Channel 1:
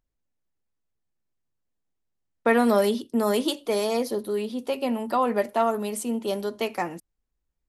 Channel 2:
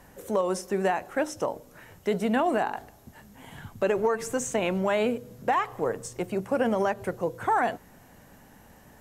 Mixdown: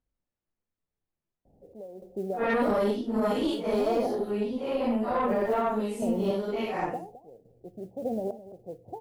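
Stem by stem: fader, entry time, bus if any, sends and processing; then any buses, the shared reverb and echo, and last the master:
+2.0 dB, 0.00 s, no send, no echo send, random phases in long frames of 200 ms; low-pass filter 1,900 Hz 6 dB per octave; tube saturation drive 16 dB, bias 0.5
−3.0 dB, 1.45 s, no send, echo send −15.5 dB, Butterworth low-pass 770 Hz 72 dB per octave; noise that follows the level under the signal 31 dB; sample-and-hold tremolo, depth 90%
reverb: not used
echo: single-tap delay 213 ms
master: brickwall limiter −17.5 dBFS, peak gain reduction 5.5 dB

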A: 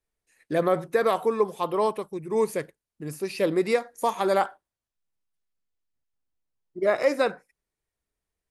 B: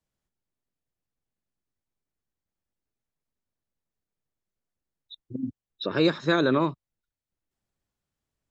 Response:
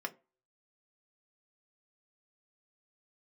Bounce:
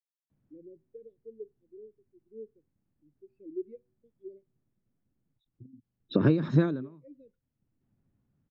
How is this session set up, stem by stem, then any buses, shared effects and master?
−15.0 dB, 0.00 s, send −16 dB, Chebyshev band-stop filter 350–2,800 Hz, order 2; low-shelf EQ 150 Hz −11.5 dB; every bin expanded away from the loudest bin 2.5 to 1
0.0 dB, 0.30 s, no send, low-pass that shuts in the quiet parts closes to 2,800 Hz; low-shelf EQ 400 Hz +7.5 dB; every ending faded ahead of time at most 140 dB per second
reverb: on, RT60 0.30 s, pre-delay 3 ms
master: octave-band graphic EQ 125/250/4,000/8,000 Hz +10/+10/−4/−10 dB; downward compressor 6 to 1, threshold −19 dBFS, peak gain reduction 11.5 dB

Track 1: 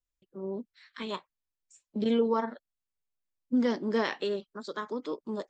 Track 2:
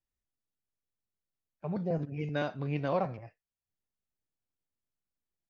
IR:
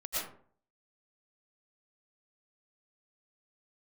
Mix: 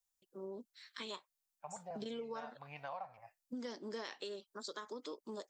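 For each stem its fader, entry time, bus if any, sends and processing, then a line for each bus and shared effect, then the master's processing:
−4.5 dB, 0.00 s, no send, bass and treble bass −9 dB, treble +13 dB
−7.0 dB, 0.00 s, no send, low shelf with overshoot 530 Hz −14 dB, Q 3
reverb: not used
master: downward compressor 5 to 1, threshold −42 dBFS, peak gain reduction 13.5 dB

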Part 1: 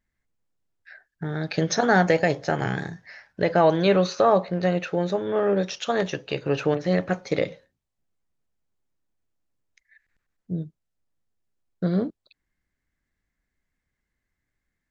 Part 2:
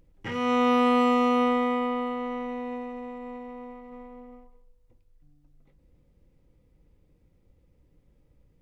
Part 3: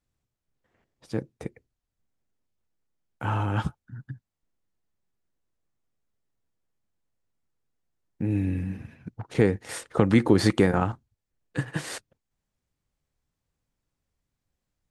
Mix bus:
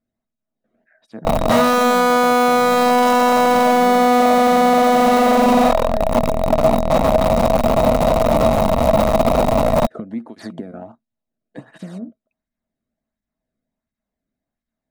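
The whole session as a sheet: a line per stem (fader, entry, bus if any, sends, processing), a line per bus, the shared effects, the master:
−8.0 dB, 0.00 s, bus A, no send, Chebyshev low-pass filter 2,500 Hz, order 5
+1.5 dB, 1.25 s, no bus, no send, sign of each sample alone; flat-topped bell 810 Hz +13.5 dB; leveller curve on the samples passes 2
+2.0 dB, 0.00 s, bus A, no send, through-zero flanger with one copy inverted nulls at 1.4 Hz, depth 1.2 ms
bus A: 0.0 dB, high-shelf EQ 2,100 Hz −11 dB; downward compressor 6 to 1, threshold −34 dBFS, peak gain reduction 17.5 dB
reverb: not used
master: hollow resonant body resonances 230/640/3,800 Hz, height 15 dB, ringing for 70 ms

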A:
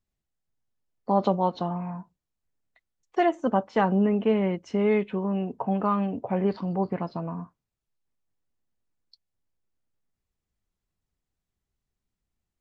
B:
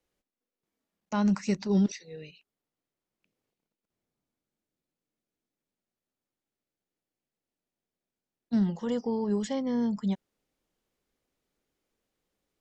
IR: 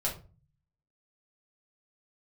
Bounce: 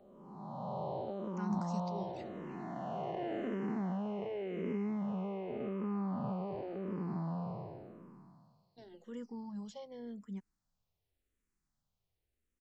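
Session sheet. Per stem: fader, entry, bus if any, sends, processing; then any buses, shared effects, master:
+2.5 dB, 0.00 s, no send, spectrum smeared in time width 1,240 ms; downward compressor, threshold −34 dBFS, peak gain reduction 9.5 dB
−12.5 dB, 0.25 s, no send, no processing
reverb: not used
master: frequency shifter mixed with the dry sound −0.89 Hz

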